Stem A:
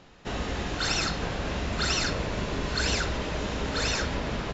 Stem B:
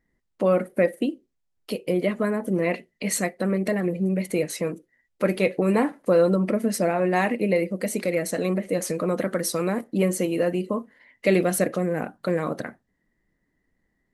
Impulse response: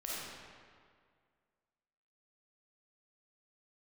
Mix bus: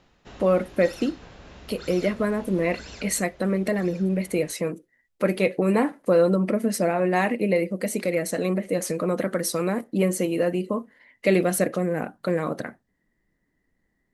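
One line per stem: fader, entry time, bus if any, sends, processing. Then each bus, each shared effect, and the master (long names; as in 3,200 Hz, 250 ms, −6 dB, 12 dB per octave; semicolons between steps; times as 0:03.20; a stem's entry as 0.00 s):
0:02.97 −7 dB → 0:03.27 −15 dB, 0.00 s, no send, automatic ducking −8 dB, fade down 0.50 s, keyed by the second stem
0.0 dB, 0.00 s, no send, no processing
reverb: not used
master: no processing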